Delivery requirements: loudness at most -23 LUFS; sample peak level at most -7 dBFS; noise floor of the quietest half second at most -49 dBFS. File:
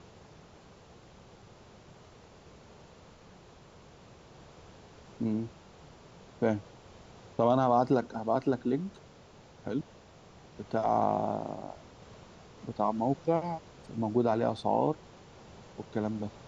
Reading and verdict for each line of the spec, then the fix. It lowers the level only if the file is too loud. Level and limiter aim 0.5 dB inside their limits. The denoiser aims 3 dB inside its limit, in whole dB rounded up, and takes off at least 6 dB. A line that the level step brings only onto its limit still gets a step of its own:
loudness -31.0 LUFS: pass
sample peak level -13.5 dBFS: pass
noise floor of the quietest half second -55 dBFS: pass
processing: none needed

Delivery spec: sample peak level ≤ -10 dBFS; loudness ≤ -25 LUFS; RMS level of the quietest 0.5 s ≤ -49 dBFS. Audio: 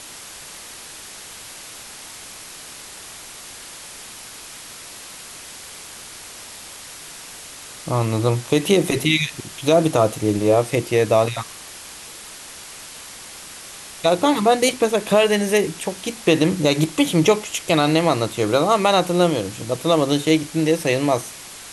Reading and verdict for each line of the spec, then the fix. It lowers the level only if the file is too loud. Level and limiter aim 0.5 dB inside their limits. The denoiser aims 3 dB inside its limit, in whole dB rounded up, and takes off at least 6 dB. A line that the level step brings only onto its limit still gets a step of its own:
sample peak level -4.5 dBFS: fail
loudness -19.0 LUFS: fail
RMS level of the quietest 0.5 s -38 dBFS: fail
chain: noise reduction 8 dB, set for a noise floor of -38 dBFS; trim -6.5 dB

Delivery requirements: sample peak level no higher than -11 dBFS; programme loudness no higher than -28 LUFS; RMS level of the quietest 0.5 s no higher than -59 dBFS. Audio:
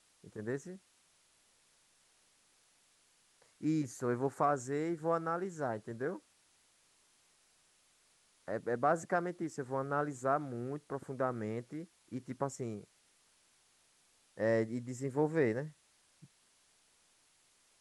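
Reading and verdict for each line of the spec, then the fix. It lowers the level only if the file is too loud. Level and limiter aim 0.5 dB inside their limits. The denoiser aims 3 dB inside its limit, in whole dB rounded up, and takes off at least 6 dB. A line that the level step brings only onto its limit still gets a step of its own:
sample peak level -17.5 dBFS: pass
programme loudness -36.5 LUFS: pass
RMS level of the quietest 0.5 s -70 dBFS: pass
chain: none needed

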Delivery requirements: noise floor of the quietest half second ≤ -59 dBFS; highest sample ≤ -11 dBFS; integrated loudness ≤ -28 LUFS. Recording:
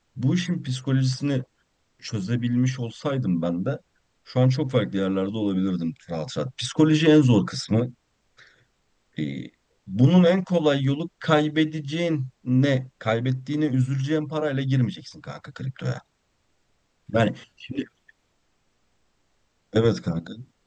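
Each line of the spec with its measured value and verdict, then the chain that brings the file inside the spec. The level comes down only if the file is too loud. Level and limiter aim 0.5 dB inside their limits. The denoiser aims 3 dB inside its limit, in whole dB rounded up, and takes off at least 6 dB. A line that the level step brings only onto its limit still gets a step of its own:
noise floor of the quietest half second -69 dBFS: pass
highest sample -5.5 dBFS: fail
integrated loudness -24.0 LUFS: fail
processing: trim -4.5 dB; peak limiter -11.5 dBFS

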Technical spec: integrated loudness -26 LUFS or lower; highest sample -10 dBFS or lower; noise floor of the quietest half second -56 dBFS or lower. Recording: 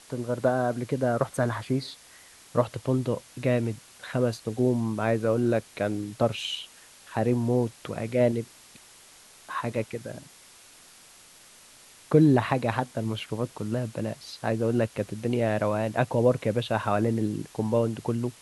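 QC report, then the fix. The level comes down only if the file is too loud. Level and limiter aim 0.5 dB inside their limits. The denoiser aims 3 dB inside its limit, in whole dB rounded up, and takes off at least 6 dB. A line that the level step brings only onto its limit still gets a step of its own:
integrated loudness -27.5 LUFS: pass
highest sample -7.0 dBFS: fail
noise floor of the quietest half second -53 dBFS: fail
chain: noise reduction 6 dB, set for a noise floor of -53 dBFS; peak limiter -10.5 dBFS

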